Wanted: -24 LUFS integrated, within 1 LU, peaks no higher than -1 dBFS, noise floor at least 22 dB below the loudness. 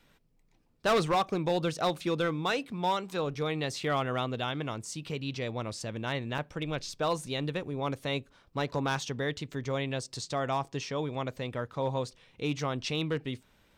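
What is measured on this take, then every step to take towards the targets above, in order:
clipped samples 0.9%; clipping level -21.5 dBFS; dropouts 1; longest dropout 1.9 ms; loudness -32.5 LUFS; peak level -21.5 dBFS; loudness target -24.0 LUFS
-> clip repair -21.5 dBFS; interpolate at 6.38 s, 1.9 ms; trim +8.5 dB

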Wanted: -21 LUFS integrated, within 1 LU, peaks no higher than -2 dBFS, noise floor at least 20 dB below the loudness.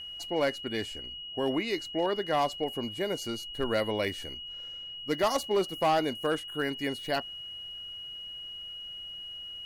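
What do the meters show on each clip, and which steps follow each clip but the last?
clipped samples 0.6%; clipping level -20.0 dBFS; steady tone 2.9 kHz; tone level -39 dBFS; loudness -32.0 LUFS; peak level -20.0 dBFS; loudness target -21.0 LUFS
-> clip repair -20 dBFS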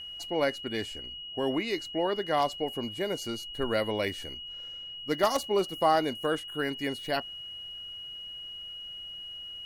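clipped samples 0.0%; steady tone 2.9 kHz; tone level -39 dBFS
-> band-stop 2.9 kHz, Q 30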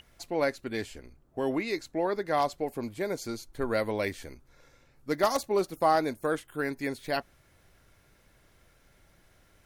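steady tone not found; loudness -30.5 LUFS; peak level -12.0 dBFS; loudness target -21.0 LUFS
-> trim +9.5 dB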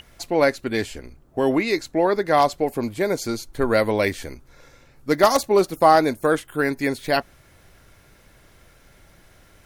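loudness -21.0 LUFS; peak level -2.5 dBFS; noise floor -54 dBFS

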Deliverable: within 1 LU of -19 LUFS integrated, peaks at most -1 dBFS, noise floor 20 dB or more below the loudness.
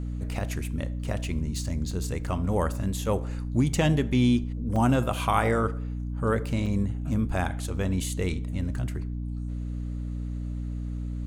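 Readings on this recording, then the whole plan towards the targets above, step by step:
dropouts 3; longest dropout 3.5 ms; hum 60 Hz; highest harmonic 300 Hz; hum level -29 dBFS; loudness -28.5 LUFS; peak level -9.0 dBFS; loudness target -19.0 LUFS
-> interpolate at 1.91/4.76/6.66 s, 3.5 ms; hum notches 60/120/180/240/300 Hz; trim +9.5 dB; peak limiter -1 dBFS

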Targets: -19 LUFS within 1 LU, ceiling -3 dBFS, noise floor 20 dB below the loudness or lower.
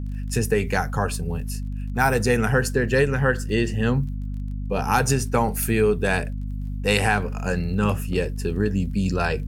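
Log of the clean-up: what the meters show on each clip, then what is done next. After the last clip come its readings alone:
tick rate 19 per s; hum 50 Hz; highest harmonic 250 Hz; hum level -26 dBFS; loudness -23.5 LUFS; peak level -3.5 dBFS; loudness target -19.0 LUFS
-> de-click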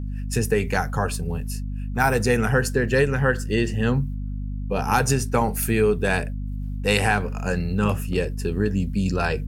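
tick rate 0 per s; hum 50 Hz; highest harmonic 250 Hz; hum level -26 dBFS
-> de-hum 50 Hz, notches 5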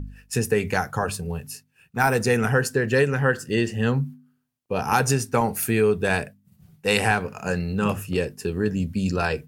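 hum not found; loudness -23.5 LUFS; peak level -4.0 dBFS; loudness target -19.0 LUFS
-> trim +4.5 dB; peak limiter -3 dBFS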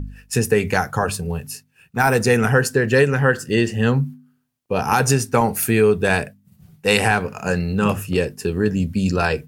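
loudness -19.5 LUFS; peak level -3.0 dBFS; noise floor -63 dBFS

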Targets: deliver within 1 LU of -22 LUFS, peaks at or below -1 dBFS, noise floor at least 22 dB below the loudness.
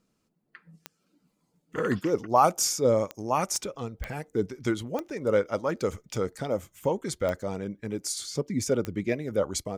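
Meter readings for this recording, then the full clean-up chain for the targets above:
clicks found 7; loudness -28.5 LUFS; peak level -8.0 dBFS; loudness target -22.0 LUFS
-> de-click; trim +6.5 dB

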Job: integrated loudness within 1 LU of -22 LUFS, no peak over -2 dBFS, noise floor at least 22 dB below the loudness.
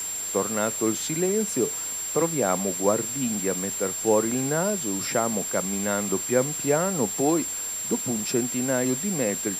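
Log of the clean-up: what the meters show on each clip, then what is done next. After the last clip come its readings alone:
steady tone 7.4 kHz; tone level -29 dBFS; noise floor -31 dBFS; noise floor target -47 dBFS; loudness -24.5 LUFS; peak level -8.0 dBFS; loudness target -22.0 LUFS
-> band-stop 7.4 kHz, Q 30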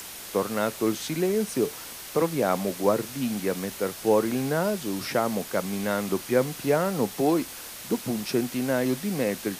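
steady tone not found; noise floor -40 dBFS; noise floor target -49 dBFS
-> noise reduction 9 dB, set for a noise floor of -40 dBFS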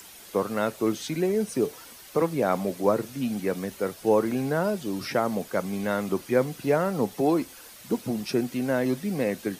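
noise floor -47 dBFS; noise floor target -49 dBFS
-> noise reduction 6 dB, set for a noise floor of -47 dBFS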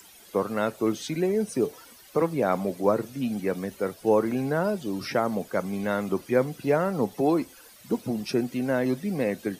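noise floor -51 dBFS; loudness -27.0 LUFS; peak level -8.5 dBFS; loudness target -22.0 LUFS
-> trim +5 dB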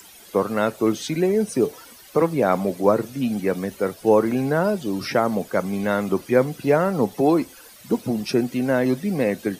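loudness -22.0 LUFS; peak level -3.5 dBFS; noise floor -46 dBFS

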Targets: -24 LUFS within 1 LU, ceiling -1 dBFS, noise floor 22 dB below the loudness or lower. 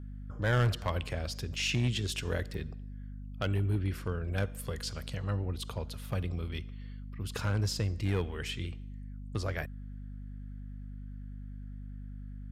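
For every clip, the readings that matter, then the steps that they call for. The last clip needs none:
clipped samples 0.5%; clipping level -22.0 dBFS; hum 50 Hz; highest harmonic 250 Hz; hum level -40 dBFS; loudness -34.0 LUFS; peak level -22.0 dBFS; loudness target -24.0 LUFS
-> clip repair -22 dBFS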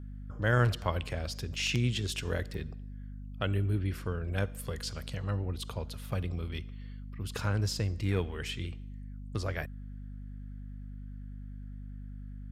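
clipped samples 0.0%; hum 50 Hz; highest harmonic 250 Hz; hum level -40 dBFS
-> de-hum 50 Hz, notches 5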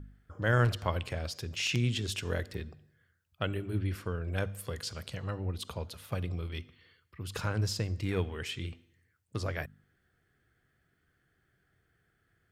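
hum not found; loudness -34.5 LUFS; peak level -14.0 dBFS; loudness target -24.0 LUFS
-> trim +10.5 dB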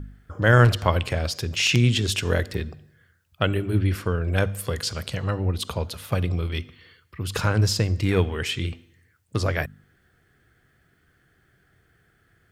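loudness -24.0 LUFS; peak level -3.5 dBFS; noise floor -65 dBFS

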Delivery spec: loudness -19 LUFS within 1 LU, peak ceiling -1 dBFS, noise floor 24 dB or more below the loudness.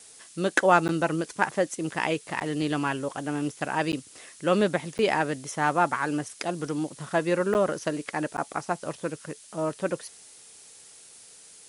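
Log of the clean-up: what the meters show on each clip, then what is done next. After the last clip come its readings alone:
dropouts 6; longest dropout 9.6 ms; noise floor -51 dBFS; noise floor target -52 dBFS; loudness -27.5 LUFS; peak level -6.0 dBFS; loudness target -19.0 LUFS
-> interpolate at 0.88/2.40/3.92/4.98/7.54/8.37 s, 9.6 ms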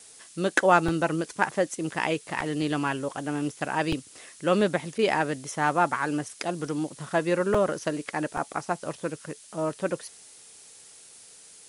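dropouts 0; noise floor -51 dBFS; noise floor target -52 dBFS
-> noise print and reduce 6 dB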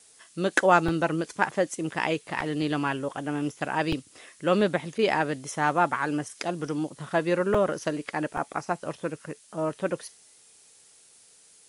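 noise floor -56 dBFS; loudness -27.5 LUFS; peak level -6.0 dBFS; loudness target -19.0 LUFS
-> trim +8.5 dB; peak limiter -1 dBFS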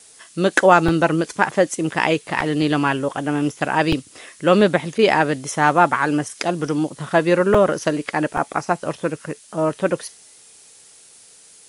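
loudness -19.5 LUFS; peak level -1.0 dBFS; noise floor -48 dBFS

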